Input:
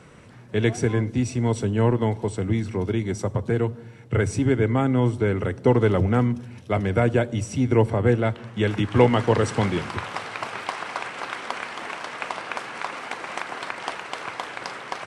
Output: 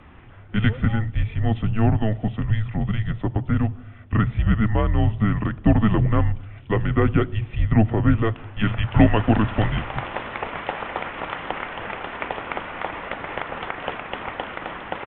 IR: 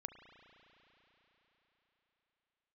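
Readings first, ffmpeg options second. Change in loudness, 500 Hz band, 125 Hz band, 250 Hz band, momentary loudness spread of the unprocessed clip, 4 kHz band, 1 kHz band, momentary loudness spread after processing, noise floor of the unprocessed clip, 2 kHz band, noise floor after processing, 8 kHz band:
+1.0 dB, -5.5 dB, +3.0 dB, +1.5 dB, 12 LU, -1.0 dB, +0.5 dB, 12 LU, -44 dBFS, +0.5 dB, -43 dBFS, under -40 dB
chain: -af "aresample=8000,aresample=44100,afreqshift=-220,volume=2dB"

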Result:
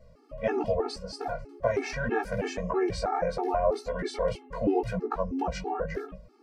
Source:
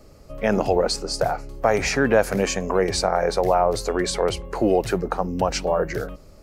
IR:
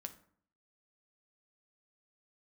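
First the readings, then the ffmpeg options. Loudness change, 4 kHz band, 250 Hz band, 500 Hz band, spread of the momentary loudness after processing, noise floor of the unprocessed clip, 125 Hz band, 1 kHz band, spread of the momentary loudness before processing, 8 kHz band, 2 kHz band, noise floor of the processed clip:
-8.0 dB, -14.0 dB, -7.0 dB, -8.0 dB, 8 LU, -47 dBFS, -7.0 dB, -7.5 dB, 6 LU, -18.0 dB, -9.0 dB, -56 dBFS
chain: -af "bandreject=f=6.8k:w=13,flanger=delay=15.5:depth=4.6:speed=1.8,aemphasis=mode=reproduction:type=75kf,bandreject=f=50:t=h:w=6,bandreject=f=100:t=h:w=6,bandreject=f=150:t=h:w=6,bandreject=f=200:t=h:w=6,afftfilt=real='re*gt(sin(2*PI*3.1*pts/sr)*(1-2*mod(floor(b*sr/1024/230),2)),0)':imag='im*gt(sin(2*PI*3.1*pts/sr)*(1-2*mod(floor(b*sr/1024/230),2)),0)':win_size=1024:overlap=0.75"

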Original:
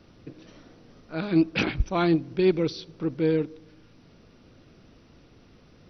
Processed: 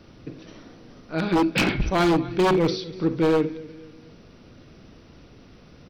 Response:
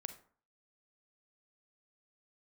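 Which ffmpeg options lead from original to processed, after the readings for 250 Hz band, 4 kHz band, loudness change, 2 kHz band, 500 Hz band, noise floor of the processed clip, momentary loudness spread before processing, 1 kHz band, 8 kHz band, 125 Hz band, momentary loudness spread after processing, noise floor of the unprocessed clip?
+2.5 dB, +5.5 dB, +3.0 dB, +5.0 dB, +3.0 dB, -50 dBFS, 10 LU, +8.5 dB, n/a, +2.5 dB, 21 LU, -56 dBFS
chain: -filter_complex "[0:a]aecho=1:1:243|486|729:0.112|0.0438|0.0171[a];[1:a]atrim=start_sample=2205,atrim=end_sample=4410[b];[a][b]afir=irnorm=-1:irlink=0,aeval=exprs='0.0794*(abs(mod(val(0)/0.0794+3,4)-2)-1)':c=same,volume=8.5dB"

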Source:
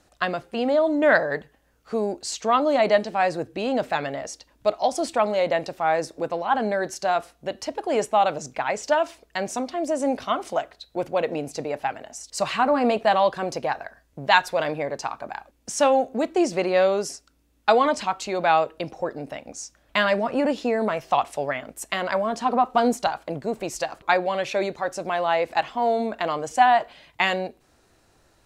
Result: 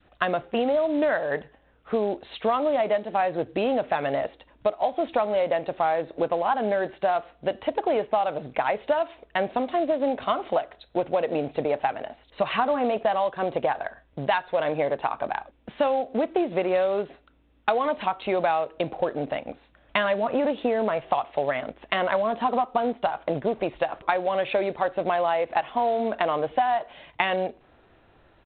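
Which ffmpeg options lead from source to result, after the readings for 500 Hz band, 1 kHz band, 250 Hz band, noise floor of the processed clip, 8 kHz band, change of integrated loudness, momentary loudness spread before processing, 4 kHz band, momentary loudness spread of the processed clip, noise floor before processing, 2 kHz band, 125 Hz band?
-1.0 dB, -2.5 dB, -2.5 dB, -60 dBFS, under -40 dB, -2.0 dB, 12 LU, -5.0 dB, 6 LU, -63 dBFS, -4.5 dB, -1.0 dB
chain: -af "adynamicequalizer=threshold=0.0224:dfrequency=640:dqfactor=0.87:tfrequency=640:tqfactor=0.87:attack=5:release=100:ratio=0.375:range=2.5:mode=boostabove:tftype=bell,acompressor=threshold=-23dB:ratio=12,aresample=8000,acrusher=bits=6:mode=log:mix=0:aa=0.000001,aresample=44100,volume=3dB"

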